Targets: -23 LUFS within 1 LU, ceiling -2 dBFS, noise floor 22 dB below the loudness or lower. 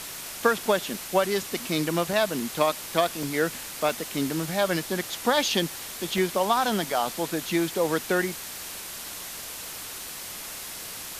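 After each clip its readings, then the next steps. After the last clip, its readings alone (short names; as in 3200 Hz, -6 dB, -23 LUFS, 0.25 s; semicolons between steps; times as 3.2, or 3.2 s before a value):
dropouts 4; longest dropout 2.2 ms; noise floor -38 dBFS; noise floor target -49 dBFS; loudness -27.0 LUFS; peak -6.0 dBFS; loudness target -23.0 LUFS
-> interpolate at 2.13/3.23/3.89/6.18, 2.2 ms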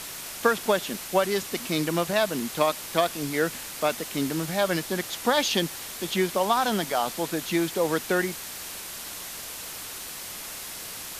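dropouts 0; noise floor -38 dBFS; noise floor target -49 dBFS
-> denoiser 11 dB, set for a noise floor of -38 dBFS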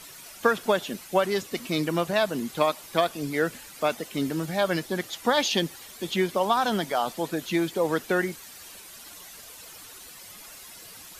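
noise floor -46 dBFS; noise floor target -49 dBFS
-> denoiser 6 dB, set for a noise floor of -46 dBFS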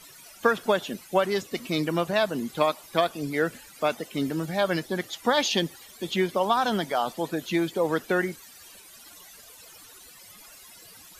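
noise floor -49 dBFS; loudness -26.5 LUFS; peak -6.0 dBFS; loudness target -23.0 LUFS
-> gain +3.5 dB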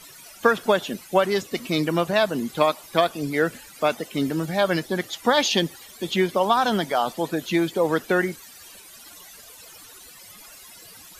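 loudness -23.0 LUFS; peak -2.5 dBFS; noise floor -46 dBFS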